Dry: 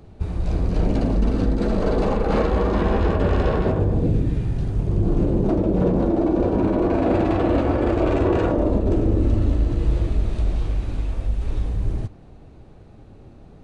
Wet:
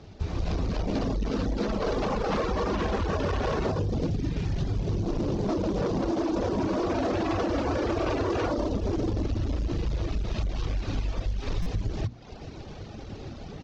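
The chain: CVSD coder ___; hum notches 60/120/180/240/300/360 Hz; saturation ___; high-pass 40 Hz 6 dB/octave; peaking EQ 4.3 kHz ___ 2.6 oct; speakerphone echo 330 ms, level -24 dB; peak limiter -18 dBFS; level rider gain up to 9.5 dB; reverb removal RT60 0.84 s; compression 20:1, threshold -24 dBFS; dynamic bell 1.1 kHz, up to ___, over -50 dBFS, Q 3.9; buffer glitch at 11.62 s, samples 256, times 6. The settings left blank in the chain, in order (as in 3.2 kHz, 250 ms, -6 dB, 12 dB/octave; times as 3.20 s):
32 kbps, -17 dBFS, +4.5 dB, +3 dB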